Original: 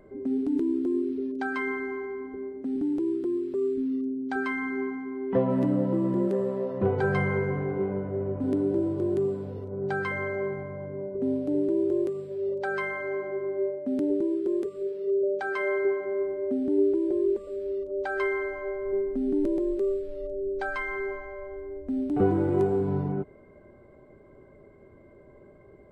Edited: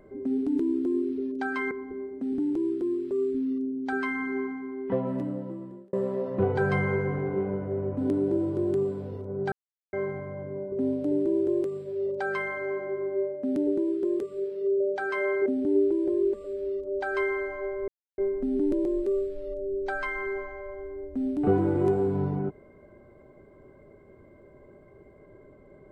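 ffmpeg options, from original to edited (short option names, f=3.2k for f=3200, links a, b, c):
-filter_complex "[0:a]asplit=7[a][b][c][d][e][f][g];[a]atrim=end=1.712[h];[b]atrim=start=2.138:end=6.36,asetpts=PTS-STARTPTS,afade=t=out:st=2.742:d=1.48[i];[c]atrim=start=6.36:end=9.95,asetpts=PTS-STARTPTS,afade=t=in:d=0.004:c=hsin,afade=t=out:st=3.586:d=0.004:c=hsin[j];[d]atrim=start=9.95:end=10.36,asetpts=PTS-STARTPTS,volume=0[k];[e]atrim=start=10.36:end=15.892,asetpts=PTS-STARTPTS,afade=t=in:d=0.004:c=hsin[l];[f]atrim=start=16.488:end=18.91,asetpts=PTS-STARTPTS,afade=t=out:st=2.418:d=0.004:c=hsin,apad=pad_dur=0.3[m];[g]atrim=start=18.91,asetpts=PTS-STARTPTS,afade=t=in:d=0.004:c=hsin[n];[i][j][k][l]concat=n=4:v=0:a=1[o];[h][o]acrossfade=d=0.004:c1=hsin:c2=hsin[p];[m][n]concat=n=2:v=0:a=1[q];[p][q]acrossfade=d=0.004:c1=hsin:c2=hsin"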